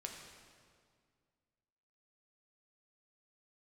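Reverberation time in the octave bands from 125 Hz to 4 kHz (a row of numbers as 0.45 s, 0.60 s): 2.4 s, 2.4 s, 2.1 s, 1.9 s, 1.7 s, 1.6 s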